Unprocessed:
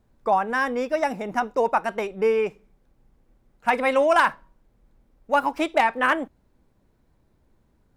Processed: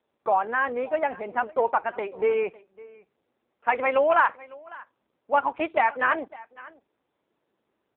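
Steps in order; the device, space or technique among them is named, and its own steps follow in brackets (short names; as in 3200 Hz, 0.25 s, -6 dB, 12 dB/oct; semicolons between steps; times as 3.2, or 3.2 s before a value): satellite phone (BPF 370–3100 Hz; echo 0.553 s -21 dB; AMR-NB 5.9 kbps 8000 Hz)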